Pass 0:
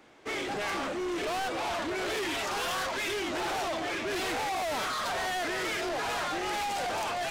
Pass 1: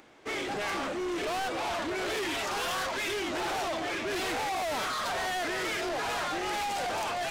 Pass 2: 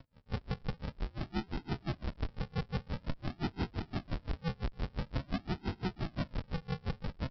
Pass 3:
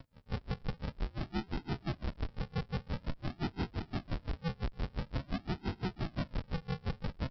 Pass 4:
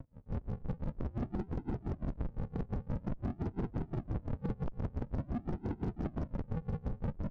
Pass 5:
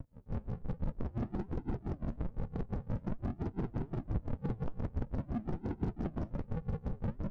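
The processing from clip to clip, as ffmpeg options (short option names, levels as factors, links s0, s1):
-af "acompressor=mode=upward:threshold=0.00178:ratio=2.5"
-af "aresample=11025,acrusher=samples=27:mix=1:aa=0.000001:lfo=1:lforange=16.2:lforate=0.48,aresample=44100,aeval=exprs='val(0)*pow(10,-31*(0.5-0.5*cos(2*PI*5.8*n/s))/20)':c=same,volume=1.19"
-af "alimiter=level_in=2.24:limit=0.0631:level=0:latency=1:release=231,volume=0.447,volume=1.41"
-af "aeval=exprs='(mod(53.1*val(0)+1,2)-1)/53.1':c=same,adynamicsmooth=sensitivity=1:basefreq=760,volume=2"
-af "flanger=delay=0.1:depth=9.6:regen=75:speed=1.2:shape=triangular,volume=1.68"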